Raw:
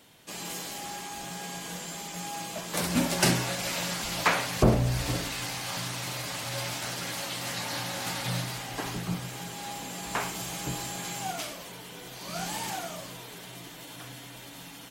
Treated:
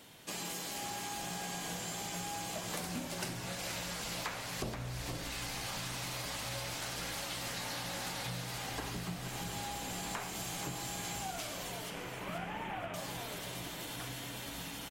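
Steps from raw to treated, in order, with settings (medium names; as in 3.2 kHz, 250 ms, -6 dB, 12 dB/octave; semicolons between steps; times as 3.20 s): 11.90–12.94 s: CVSD coder 16 kbps; compression 12:1, threshold -38 dBFS, peak gain reduction 22.5 dB; frequency-shifting echo 478 ms, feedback 35%, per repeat -65 Hz, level -8 dB; trim +1 dB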